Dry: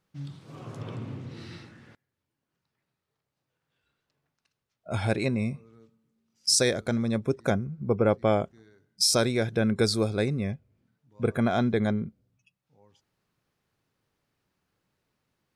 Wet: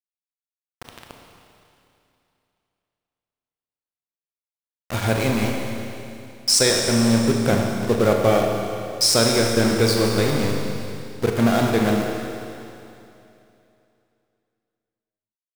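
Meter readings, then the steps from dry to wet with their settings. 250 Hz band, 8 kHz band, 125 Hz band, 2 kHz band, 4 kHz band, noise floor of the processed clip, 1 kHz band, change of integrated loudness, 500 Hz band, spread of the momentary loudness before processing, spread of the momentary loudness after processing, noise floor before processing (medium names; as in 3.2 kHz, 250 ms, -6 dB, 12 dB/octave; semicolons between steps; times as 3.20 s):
+7.0 dB, +7.0 dB, +5.5 dB, +8.0 dB, +7.5 dB, under -85 dBFS, +8.0 dB, +6.5 dB, +7.0 dB, 19 LU, 16 LU, -84 dBFS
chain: small samples zeroed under -28 dBFS; Schroeder reverb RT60 2.8 s, combs from 27 ms, DRR 1 dB; trim +4.5 dB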